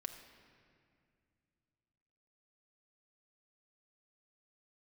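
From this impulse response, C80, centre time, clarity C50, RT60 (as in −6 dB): 9.0 dB, 29 ms, 8.0 dB, 2.3 s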